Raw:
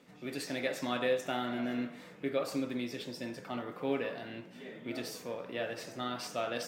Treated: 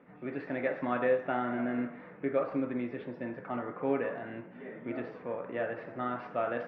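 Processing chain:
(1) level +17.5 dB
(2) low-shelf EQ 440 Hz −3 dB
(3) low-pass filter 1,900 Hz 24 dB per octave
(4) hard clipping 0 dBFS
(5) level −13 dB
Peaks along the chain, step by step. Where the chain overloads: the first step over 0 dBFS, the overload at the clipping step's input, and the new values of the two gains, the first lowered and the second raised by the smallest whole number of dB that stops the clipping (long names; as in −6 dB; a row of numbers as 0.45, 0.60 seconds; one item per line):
−1.5, −2.5, −4.0, −4.0, −17.0 dBFS
no step passes full scale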